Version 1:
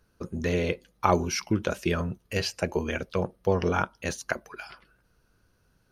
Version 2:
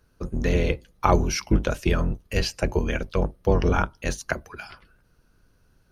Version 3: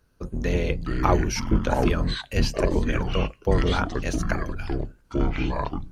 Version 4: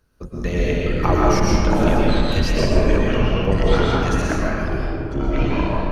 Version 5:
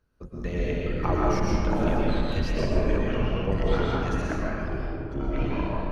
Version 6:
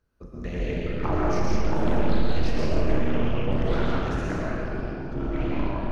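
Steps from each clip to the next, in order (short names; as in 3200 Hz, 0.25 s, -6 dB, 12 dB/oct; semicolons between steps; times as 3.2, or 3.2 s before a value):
octaver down 2 oct, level +4 dB; gain +2 dB
echoes that change speed 0.239 s, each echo -6 st, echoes 2; gain -2 dB
digital reverb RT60 2.1 s, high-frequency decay 0.6×, pre-delay 85 ms, DRR -4.5 dB
high shelf 4700 Hz -9 dB; gain -7.5 dB
delay with a stepping band-pass 0.304 s, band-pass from 160 Hz, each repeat 0.7 oct, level -4 dB; Schroeder reverb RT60 1 s, combs from 26 ms, DRR 3.5 dB; Doppler distortion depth 0.39 ms; gain -2 dB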